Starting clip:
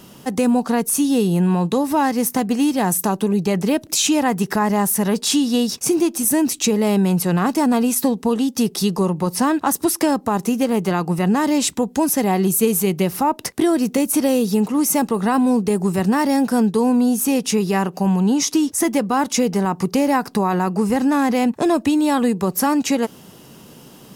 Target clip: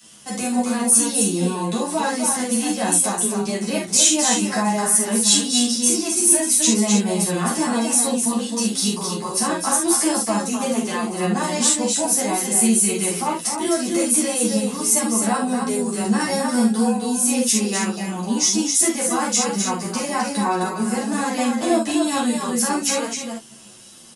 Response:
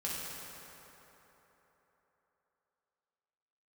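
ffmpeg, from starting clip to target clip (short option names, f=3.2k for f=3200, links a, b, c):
-filter_complex "[0:a]aresample=22050,aresample=44100,aemphasis=mode=production:type=bsi,asplit=2[a][b];[b]aecho=0:1:259:0.531[c];[a][c]amix=inputs=2:normalize=0[d];[1:a]atrim=start_sample=2205,atrim=end_sample=4410,asetrate=57330,aresample=44100[e];[d][e]afir=irnorm=-1:irlink=0,acrossover=split=170|1400[f][g][h];[g]aeval=exprs='sgn(val(0))*max(abs(val(0))-0.00237,0)':c=same[i];[f][i][h]amix=inputs=3:normalize=0,asplit=2[j][k];[k]adelay=9.7,afreqshift=-1.2[l];[j][l]amix=inputs=2:normalize=1,volume=2dB"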